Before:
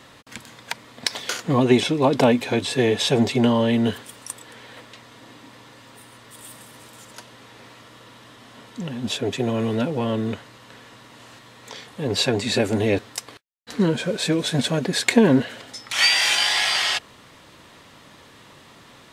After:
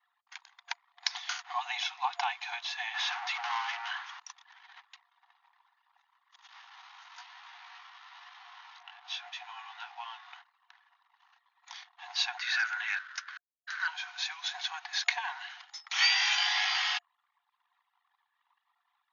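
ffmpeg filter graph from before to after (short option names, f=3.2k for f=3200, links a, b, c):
-filter_complex "[0:a]asettb=1/sr,asplit=3[a][b][c];[a]atrim=end=2.944[d];[b]atrim=start=2.94:end=4.2,asetpts=PTS-STARTPTS,afade=t=in:d=0.004:c=qsin,afade=t=out:st=1.256:d=0.004:c=qsin,equalizer=f=1.3k:w=0.56:g=12,volume=20.5dB,asoftclip=hard,volume=-20.5dB[e];[c]atrim=start=4.196[f];[d][e]acrossfade=d=0.004:c1=hsin:c2=qsin[g];[g][f]acrossfade=d=0.004:c1=qsin:c2=hsin,asettb=1/sr,asplit=3[h][i][j];[h]atrim=end=6.474[k];[i]atrim=start=6.47:end=10.35,asetpts=PTS-STARTPTS,afade=t=in:d=0.004:c=qsin,afade=t=out:st=3.876:d=0.004:c=qsin,aeval=exprs='val(0)+0.5*0.0168*sgn(val(0))':c=same,lowpass=5.2k,flanger=delay=16.5:depth=4:speed=1.1[l];[j]atrim=start=10.346[m];[k][l]acrossfade=d=0.004:c1=hsin:c2=qsin[n];[n][m]acrossfade=d=0.004:c1=qsin:c2=hsin,asettb=1/sr,asplit=3[o][p][q];[o]atrim=end=12.374[r];[p]atrim=start=12.37:end=13.88,asetpts=PTS-STARTPTS,afade=t=in:d=0.004:c=qsin,afade=t=out:st=1.506:d=0.004:c=qsin,highpass=f=1.5k:t=q:w=8.8,asoftclip=type=hard:threshold=-17.5dB[s];[q]atrim=start=13.876[t];[r][s]acrossfade=d=0.004:c1=hsin:c2=qsin[u];[u][t]acrossfade=d=0.004:c1=qsin:c2=hsin,anlmdn=0.251,afftfilt=real='re*between(b*sr/4096,700,6800)':imag='im*between(b*sr/4096,700,6800)':win_size=4096:overlap=0.75,adynamicequalizer=threshold=0.0158:dfrequency=4200:dqfactor=0.7:tfrequency=4200:tqfactor=0.7:attack=5:release=100:ratio=0.375:range=3:mode=cutabove:tftype=highshelf,volume=-7dB"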